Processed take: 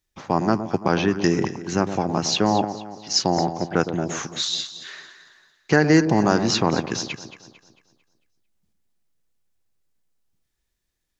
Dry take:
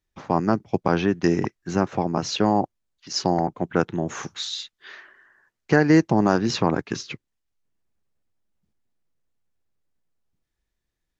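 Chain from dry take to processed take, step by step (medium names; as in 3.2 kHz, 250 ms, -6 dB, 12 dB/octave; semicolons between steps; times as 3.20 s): treble shelf 2.9 kHz +8 dB; on a send: echo whose repeats swap between lows and highs 112 ms, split 990 Hz, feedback 63%, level -9 dB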